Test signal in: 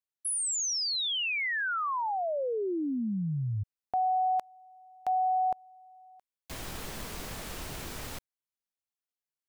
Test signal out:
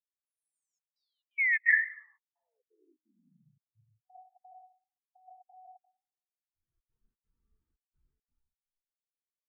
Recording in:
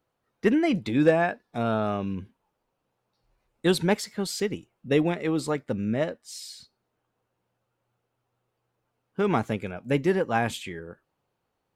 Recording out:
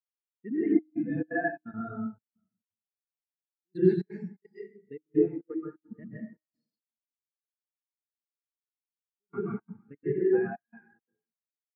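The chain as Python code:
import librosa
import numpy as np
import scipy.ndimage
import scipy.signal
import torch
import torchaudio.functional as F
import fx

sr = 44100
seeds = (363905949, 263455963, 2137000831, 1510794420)

y = fx.echo_feedback(x, sr, ms=90, feedback_pct=16, wet_db=-6.0)
y = fx.dynamic_eq(y, sr, hz=2000.0, q=1.4, threshold_db=-44.0, ratio=5.0, max_db=7)
y = fx.level_steps(y, sr, step_db=24)
y = fx.rev_plate(y, sr, seeds[0], rt60_s=1.4, hf_ratio=0.65, predelay_ms=115, drr_db=-4.5)
y = fx.step_gate(y, sr, bpm=172, pattern='xx.xxxxxx..xxx.x', floor_db=-24.0, edge_ms=4.5)
y = fx.peak_eq(y, sr, hz=590.0, db=-11.5, octaves=0.39)
y = fx.notch(y, sr, hz=750.0, q=12.0)
y = fx.comb_fb(y, sr, f0_hz=310.0, decay_s=1.0, harmonics='all', damping=0.0, mix_pct=40)
y = fx.spectral_expand(y, sr, expansion=2.5)
y = F.gain(torch.from_numpy(y), 3.0).numpy()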